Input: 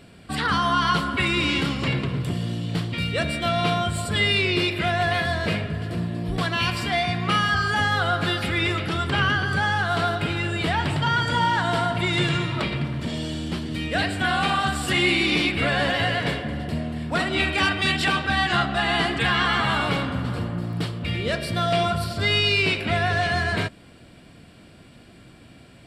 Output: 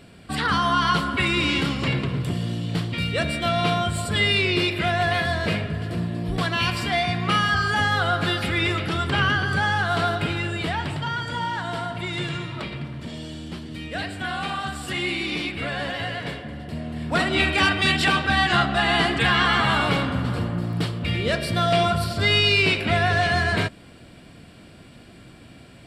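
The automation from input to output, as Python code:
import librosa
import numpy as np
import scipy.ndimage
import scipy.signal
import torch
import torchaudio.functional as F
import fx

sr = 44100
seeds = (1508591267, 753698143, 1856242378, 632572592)

y = fx.gain(x, sr, db=fx.line((10.24, 0.5), (11.18, -6.0), (16.65, -6.0), (17.16, 2.0)))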